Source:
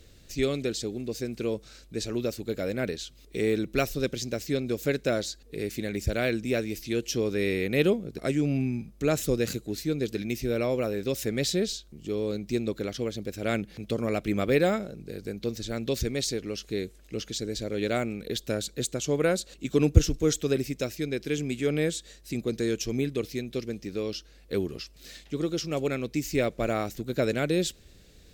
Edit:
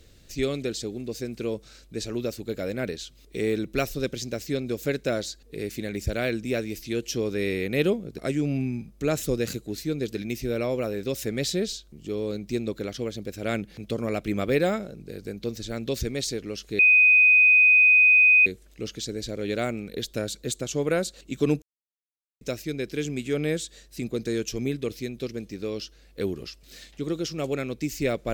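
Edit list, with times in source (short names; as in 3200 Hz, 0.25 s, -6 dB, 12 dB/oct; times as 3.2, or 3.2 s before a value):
16.79 add tone 2500 Hz -13 dBFS 1.67 s
19.95–20.74 mute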